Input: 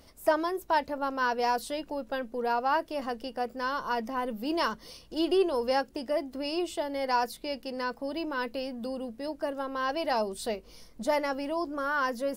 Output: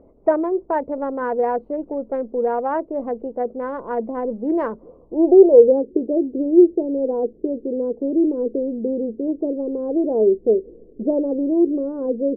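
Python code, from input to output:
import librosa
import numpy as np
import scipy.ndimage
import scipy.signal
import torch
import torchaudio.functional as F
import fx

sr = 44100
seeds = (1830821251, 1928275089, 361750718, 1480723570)

y = fx.wiener(x, sr, points=25)
y = fx.filter_sweep_lowpass(y, sr, from_hz=2000.0, to_hz=400.0, start_s=4.66, end_s=5.73, q=3.3)
y = fx.curve_eq(y, sr, hz=(130.0, 440.0, 2600.0), db=(0, 12, -19))
y = y * 10.0 ** (2.0 / 20.0)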